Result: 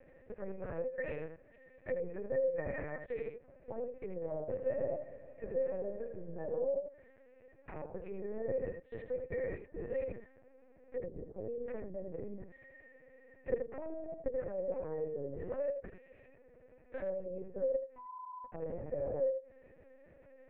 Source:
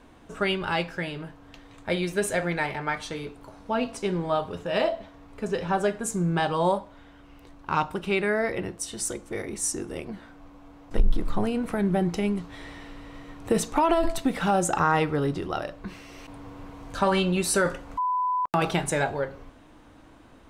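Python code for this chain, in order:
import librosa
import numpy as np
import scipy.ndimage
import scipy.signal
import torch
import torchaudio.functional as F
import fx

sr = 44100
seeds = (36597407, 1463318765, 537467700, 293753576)

y = fx.notch(x, sr, hz=700.0, q=18.0)
y = fx.env_lowpass_down(y, sr, base_hz=540.0, full_db=-22.0)
y = scipy.signal.sosfilt(scipy.signal.butter(4, 110.0, 'highpass', fs=sr, output='sos'), y)
y = fx.level_steps(y, sr, step_db=20)
y = fx.clip_asym(y, sr, top_db=-34.5, bottom_db=-19.0)
y = fx.formant_cascade(y, sr, vowel='e')
y = y + 10.0 ** (-6.5 / 20.0) * np.pad(y, (int(83 * sr / 1000.0), 0))[:len(y)]
y = fx.lpc_vocoder(y, sr, seeds[0], excitation='pitch_kept', order=8)
y = fx.echo_warbled(y, sr, ms=154, feedback_pct=69, rate_hz=2.8, cents=56, wet_db=-16, at=(4.46, 6.67))
y = F.gain(torch.from_numpy(y), 12.5).numpy()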